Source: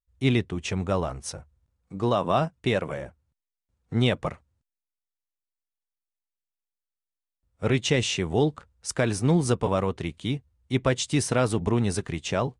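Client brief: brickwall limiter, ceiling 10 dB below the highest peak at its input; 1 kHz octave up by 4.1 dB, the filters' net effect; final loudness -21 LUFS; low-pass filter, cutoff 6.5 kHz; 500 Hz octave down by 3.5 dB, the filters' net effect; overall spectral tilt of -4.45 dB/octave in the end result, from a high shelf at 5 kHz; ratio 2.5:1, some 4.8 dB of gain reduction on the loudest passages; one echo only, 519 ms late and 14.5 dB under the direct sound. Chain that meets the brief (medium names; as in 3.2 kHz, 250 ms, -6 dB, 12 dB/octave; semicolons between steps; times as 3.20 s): low-pass 6.5 kHz; peaking EQ 500 Hz -6.5 dB; peaking EQ 1 kHz +7 dB; treble shelf 5 kHz +6.5 dB; compression 2.5:1, threshold -25 dBFS; peak limiter -22 dBFS; delay 519 ms -14.5 dB; trim +12.5 dB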